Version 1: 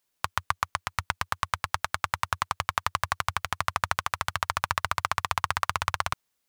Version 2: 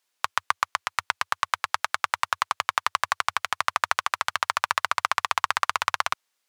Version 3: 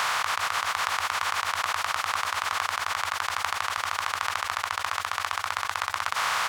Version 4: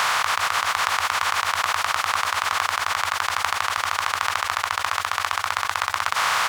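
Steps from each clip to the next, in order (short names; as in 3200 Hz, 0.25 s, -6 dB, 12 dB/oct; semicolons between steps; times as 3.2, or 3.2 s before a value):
weighting filter A; gain +3 dB
per-bin compression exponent 0.2; negative-ratio compressor -23 dBFS, ratio -0.5; echo 0.424 s -15 dB; gain -1 dB
modulation noise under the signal 30 dB; gain +5 dB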